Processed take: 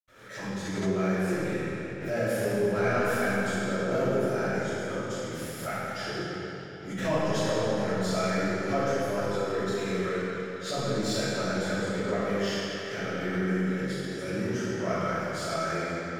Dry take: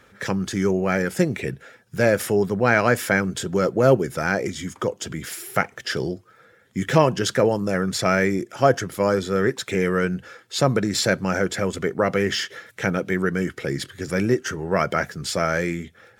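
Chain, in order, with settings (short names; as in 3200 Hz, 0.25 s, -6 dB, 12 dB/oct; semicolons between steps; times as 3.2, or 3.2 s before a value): in parallel at -3 dB: overloaded stage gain 19 dB; on the sum: reverb RT60 3.6 s, pre-delay 77 ms; backwards sustainer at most 75 dB/s; gain +6.5 dB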